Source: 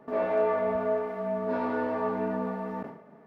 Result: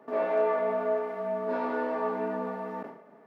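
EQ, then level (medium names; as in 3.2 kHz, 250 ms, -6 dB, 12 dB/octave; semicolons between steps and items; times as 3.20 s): high-pass 260 Hz 12 dB/octave; 0.0 dB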